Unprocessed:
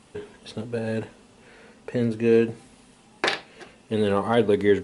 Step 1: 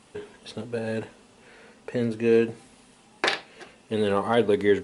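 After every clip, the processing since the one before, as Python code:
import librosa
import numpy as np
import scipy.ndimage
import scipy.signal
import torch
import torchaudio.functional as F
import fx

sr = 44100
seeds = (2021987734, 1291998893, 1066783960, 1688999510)

y = fx.low_shelf(x, sr, hz=240.0, db=-5.0)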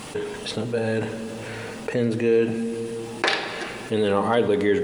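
y = fx.room_shoebox(x, sr, seeds[0], volume_m3=3900.0, walls='mixed', distance_m=0.52)
y = fx.quant_dither(y, sr, seeds[1], bits=12, dither='none')
y = fx.env_flatten(y, sr, amount_pct=50)
y = F.gain(torch.from_numpy(y), -1.5).numpy()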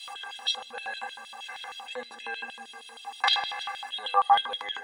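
y = fx.stiff_resonator(x, sr, f0_hz=240.0, decay_s=0.21, stiffness=0.03)
y = fx.small_body(y, sr, hz=(740.0, 1700.0, 3700.0), ring_ms=50, db=15)
y = fx.filter_lfo_highpass(y, sr, shape='square', hz=6.4, low_hz=1000.0, high_hz=3300.0, q=7.6)
y = F.gain(torch.from_numpy(y), 3.0).numpy()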